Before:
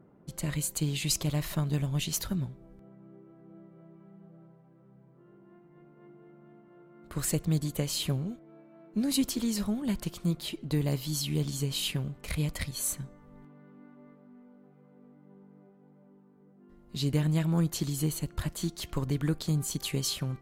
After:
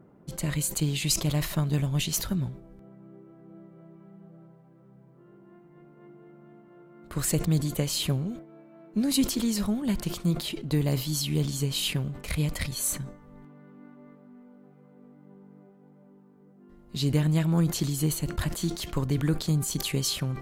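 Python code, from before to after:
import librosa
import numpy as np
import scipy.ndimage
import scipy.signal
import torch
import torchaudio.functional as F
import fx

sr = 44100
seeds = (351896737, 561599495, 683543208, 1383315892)

y = fx.sustainer(x, sr, db_per_s=120.0)
y = y * 10.0 ** (3.0 / 20.0)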